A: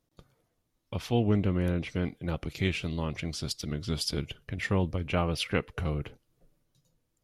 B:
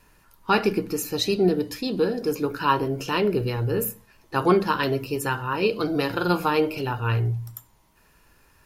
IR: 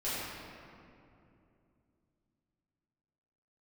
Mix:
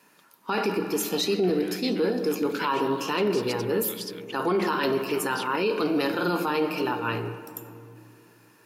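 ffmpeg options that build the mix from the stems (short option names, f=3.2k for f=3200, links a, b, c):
-filter_complex "[0:a]highpass=1.4k,acompressor=threshold=-40dB:ratio=2.5,volume=2dB[a];[1:a]highpass=f=180:w=0.5412,highpass=f=180:w=1.3066,volume=0dB,asplit=2[b][c];[c]volume=-15.5dB[d];[2:a]atrim=start_sample=2205[e];[d][e]afir=irnorm=-1:irlink=0[f];[a][b][f]amix=inputs=3:normalize=0,alimiter=limit=-16.5dB:level=0:latency=1:release=11"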